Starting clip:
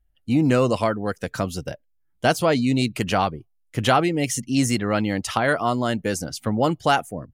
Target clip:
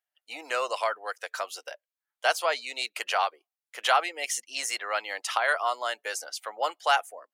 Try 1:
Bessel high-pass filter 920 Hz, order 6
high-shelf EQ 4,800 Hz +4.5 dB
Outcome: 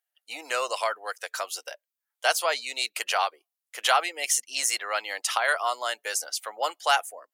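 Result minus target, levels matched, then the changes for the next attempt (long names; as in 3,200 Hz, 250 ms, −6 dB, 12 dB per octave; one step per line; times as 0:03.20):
8,000 Hz band +5.0 dB
change: high-shelf EQ 4,800 Hz −5 dB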